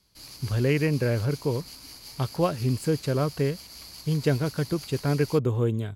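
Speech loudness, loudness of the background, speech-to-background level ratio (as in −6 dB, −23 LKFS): −26.5 LKFS, −42.0 LKFS, 15.5 dB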